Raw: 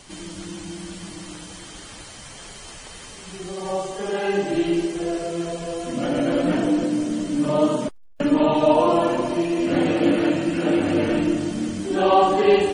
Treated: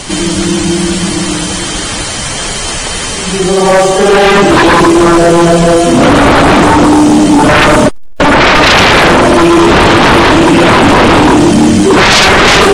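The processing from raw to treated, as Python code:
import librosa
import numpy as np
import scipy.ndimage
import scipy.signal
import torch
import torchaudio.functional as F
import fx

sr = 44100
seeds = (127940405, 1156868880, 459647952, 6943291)

y = fx.low_shelf(x, sr, hz=430.0, db=5.5, at=(4.55, 5.77))
y = fx.fold_sine(y, sr, drive_db=18, ceiling_db=-4.0)
y = y * 10.0 ** (2.5 / 20.0)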